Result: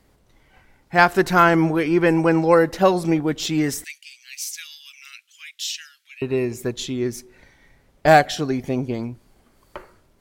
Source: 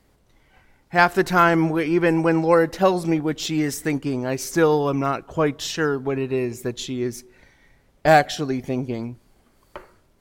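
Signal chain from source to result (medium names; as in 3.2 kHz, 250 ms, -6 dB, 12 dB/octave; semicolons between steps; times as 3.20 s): 3.84–6.22 s: steep high-pass 2.3 kHz 36 dB/octave; trim +1.5 dB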